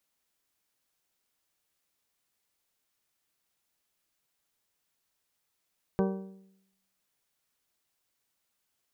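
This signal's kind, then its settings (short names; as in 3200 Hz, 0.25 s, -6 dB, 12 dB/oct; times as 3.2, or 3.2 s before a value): metal hit bell, lowest mode 192 Hz, modes 8, decay 0.83 s, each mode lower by 3 dB, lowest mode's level -23.5 dB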